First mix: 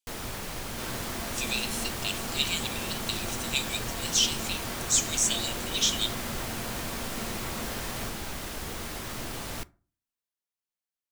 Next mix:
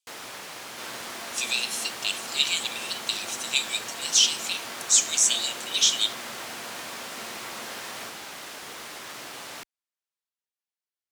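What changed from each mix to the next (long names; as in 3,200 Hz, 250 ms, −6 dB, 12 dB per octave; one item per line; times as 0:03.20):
speech: add high-shelf EQ 3,100 Hz +6.5 dB
first sound: send off
master: add meter weighting curve A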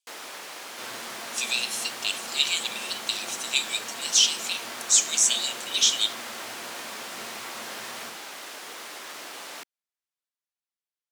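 first sound: add high-pass filter 260 Hz 12 dB per octave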